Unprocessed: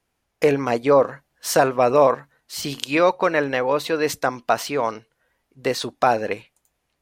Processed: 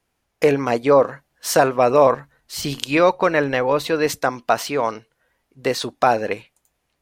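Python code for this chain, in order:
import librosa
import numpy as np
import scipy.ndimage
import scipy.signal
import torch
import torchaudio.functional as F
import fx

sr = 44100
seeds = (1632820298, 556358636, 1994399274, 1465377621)

y = fx.low_shelf(x, sr, hz=93.0, db=12.0, at=(2.06, 4.07))
y = F.gain(torch.from_numpy(y), 1.5).numpy()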